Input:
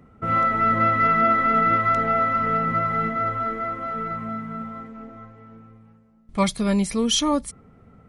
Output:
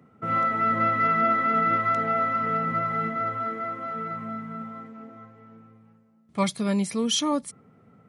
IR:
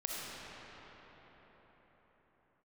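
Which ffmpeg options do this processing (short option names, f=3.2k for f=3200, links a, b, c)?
-af "highpass=f=110:w=0.5412,highpass=f=110:w=1.3066,volume=-3.5dB"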